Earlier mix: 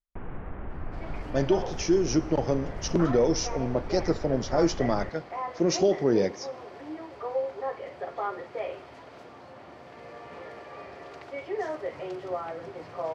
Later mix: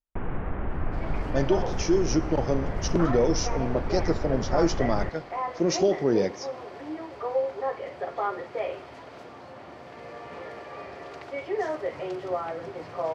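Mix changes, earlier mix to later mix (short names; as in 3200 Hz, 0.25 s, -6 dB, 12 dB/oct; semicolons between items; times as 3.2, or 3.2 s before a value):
first sound +7.0 dB; second sound +3.0 dB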